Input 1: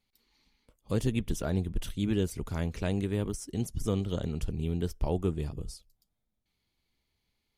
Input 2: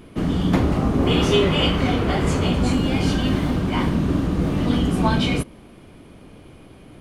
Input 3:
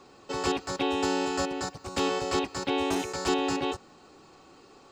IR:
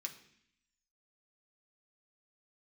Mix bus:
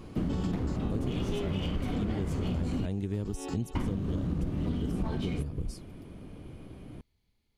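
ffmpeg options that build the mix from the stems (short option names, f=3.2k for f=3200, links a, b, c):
-filter_complex "[0:a]volume=-2.5dB,asplit=2[a][b];[1:a]bandreject=f=53.2:t=h:w=4,bandreject=f=106.4:t=h:w=4,bandreject=f=159.6:t=h:w=4,bandreject=f=212.8:t=h:w=4,bandreject=f=266:t=h:w=4,bandreject=f=319.2:t=h:w=4,bandreject=f=372.4:t=h:w=4,bandreject=f=425.6:t=h:w=4,bandreject=f=478.8:t=h:w=4,bandreject=f=532:t=h:w=4,bandreject=f=585.2:t=h:w=4,bandreject=f=638.4:t=h:w=4,bandreject=f=691.6:t=h:w=4,bandreject=f=744.8:t=h:w=4,bandreject=f=798:t=h:w=4,bandreject=f=851.2:t=h:w=4,bandreject=f=904.4:t=h:w=4,bandreject=f=957.6:t=h:w=4,bandreject=f=1.0108k:t=h:w=4,bandreject=f=1.064k:t=h:w=4,bandreject=f=1.1172k:t=h:w=4,bandreject=f=1.1704k:t=h:w=4,bandreject=f=1.2236k:t=h:w=4,bandreject=f=1.2768k:t=h:w=4,bandreject=f=1.33k:t=h:w=4,bandreject=f=1.3832k:t=h:w=4,bandreject=f=1.4364k:t=h:w=4,bandreject=f=1.4896k:t=h:w=4,bandreject=f=1.5428k:t=h:w=4,bandreject=f=1.596k:t=h:w=4,bandreject=f=1.6492k:t=h:w=4,bandreject=f=1.7024k:t=h:w=4,bandreject=f=1.7556k:t=h:w=4,bandreject=f=1.8088k:t=h:w=4,bandreject=f=1.862k:t=h:w=4,bandreject=f=1.9152k:t=h:w=4,aeval=exprs='clip(val(0),-1,0.106)':c=same,volume=-8dB,asplit=3[c][d][e];[c]atrim=end=2.86,asetpts=PTS-STARTPTS,afade=t=out:st=2.856:d=0.004:c=hsin[f];[d]atrim=start=2.86:end=3.75,asetpts=PTS-STARTPTS,volume=0[g];[e]atrim=start=3.75,asetpts=PTS-STARTPTS,afade=t=in:d=0.004:c=hsin[h];[f][g][h]concat=n=3:v=0:a=1[i];[2:a]alimiter=limit=-24dB:level=0:latency=1:release=186,volume=-4.5dB[j];[b]apad=whole_len=216926[k];[j][k]sidechaincompress=threshold=-45dB:ratio=5:attack=9.7:release=181[l];[a][i][l]amix=inputs=3:normalize=0,lowshelf=f=410:g=9.5,acompressor=threshold=-27dB:ratio=12"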